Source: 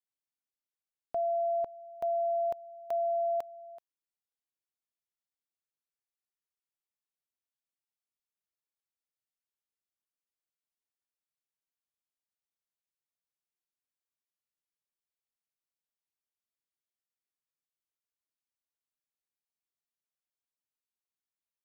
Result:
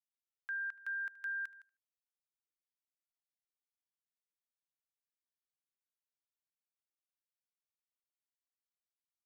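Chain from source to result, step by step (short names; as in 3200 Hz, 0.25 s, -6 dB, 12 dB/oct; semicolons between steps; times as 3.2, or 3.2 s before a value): speed mistake 33 rpm record played at 78 rpm; HPF 1000 Hz 12 dB/oct; feedback echo 75 ms, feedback 23%, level -20 dB; gain -7.5 dB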